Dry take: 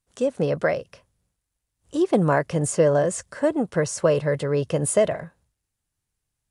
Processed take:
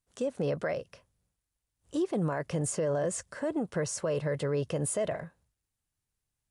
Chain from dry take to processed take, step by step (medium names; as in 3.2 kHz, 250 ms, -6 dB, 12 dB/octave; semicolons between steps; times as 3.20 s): peak limiter -17.5 dBFS, peak gain reduction 10 dB; trim -5 dB